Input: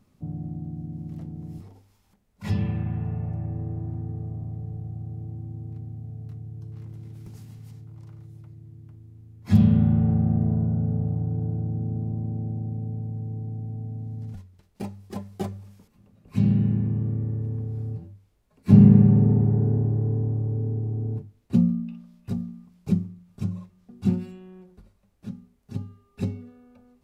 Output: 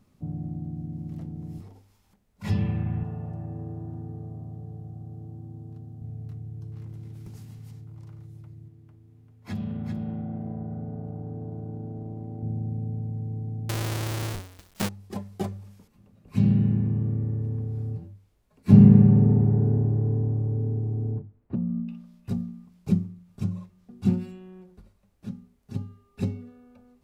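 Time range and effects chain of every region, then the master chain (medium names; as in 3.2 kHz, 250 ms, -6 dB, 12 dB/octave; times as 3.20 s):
3.03–6.02 s: high-pass 180 Hz 6 dB/octave + peaking EQ 2.2 kHz -13 dB 0.28 oct
8.68–12.43 s: tone controls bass -7 dB, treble -4 dB + compression 3:1, threshold -31 dBFS + delay 393 ms -6.5 dB
13.69–14.89 s: square wave that keeps the level + treble shelf 2.4 kHz +8 dB + tape noise reduction on one side only encoder only
21.11–21.88 s: low-pass 1.4 kHz + compression, threshold -24 dBFS
whole clip: none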